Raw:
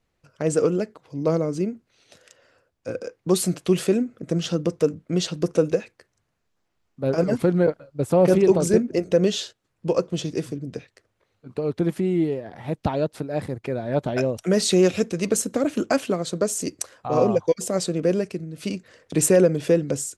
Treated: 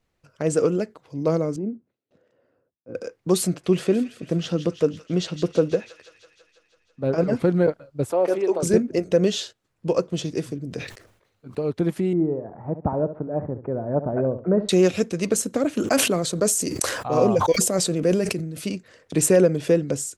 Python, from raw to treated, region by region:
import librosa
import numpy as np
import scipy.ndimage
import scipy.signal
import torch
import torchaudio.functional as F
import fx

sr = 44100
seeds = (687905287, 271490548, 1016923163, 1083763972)

y = fx.chain(x, sr, fx.transient(attack_db=-10, sustain_db=2),
    fx.bandpass_q(hz=250.0, q=0.9),
    fx.gate_hold(open_db=-60.0, close_db=-65.0, hold_ms=71.0, range_db=-21, attack_ms=1.4, release_ms=100.0), at=(1.56, 2.95))
y = fx.chain(y, sr, fx.high_shelf(hz=6100.0, db=-12.0),
    fx.echo_wet_highpass(ms=165, feedback_pct=68, hz=1700.0, wet_db=-9.5), at=(3.47, 7.45))
y = fx.chain(y, sr, fx.bessel_highpass(hz=470.0, order=4),
    fx.high_shelf(hz=2200.0, db=-8.5), at=(8.11, 8.63))
y = fx.chain(y, sr, fx.high_shelf(hz=9900.0, db=5.5),
    fx.sustainer(db_per_s=88.0), at=(10.58, 11.62))
y = fx.chain(y, sr, fx.lowpass(hz=1200.0, slope=24),
    fx.echo_feedback(ms=68, feedback_pct=25, wet_db=-12), at=(12.13, 14.69))
y = fx.chain(y, sr, fx.high_shelf(hz=9100.0, db=9.5),
    fx.sustainer(db_per_s=47.0), at=(15.8, 18.66))